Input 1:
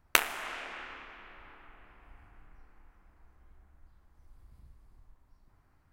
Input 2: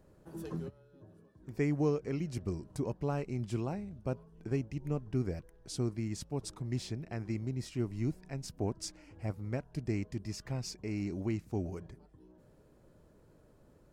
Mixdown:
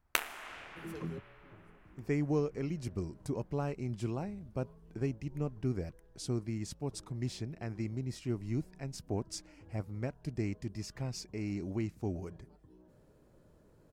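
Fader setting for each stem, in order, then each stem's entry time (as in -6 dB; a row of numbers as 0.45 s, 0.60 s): -7.5 dB, -1.0 dB; 0.00 s, 0.50 s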